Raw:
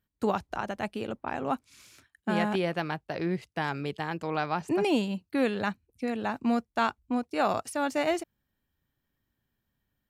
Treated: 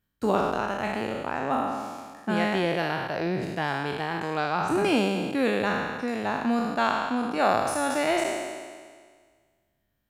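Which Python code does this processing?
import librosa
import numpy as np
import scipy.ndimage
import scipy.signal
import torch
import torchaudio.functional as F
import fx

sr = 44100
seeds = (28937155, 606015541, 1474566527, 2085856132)

y = fx.spec_trails(x, sr, decay_s=1.71)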